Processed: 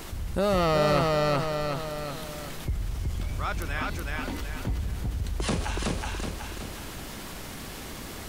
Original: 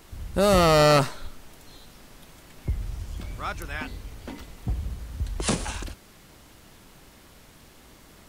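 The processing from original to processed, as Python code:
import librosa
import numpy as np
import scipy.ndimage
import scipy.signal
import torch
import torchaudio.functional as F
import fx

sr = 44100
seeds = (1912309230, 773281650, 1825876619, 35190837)

p1 = fx.dynamic_eq(x, sr, hz=8800.0, q=0.73, threshold_db=-46.0, ratio=4.0, max_db=-8)
p2 = p1 + fx.echo_feedback(p1, sr, ms=373, feedback_pct=33, wet_db=-3, dry=0)
p3 = fx.env_flatten(p2, sr, amount_pct=50)
y = p3 * librosa.db_to_amplitude(-7.0)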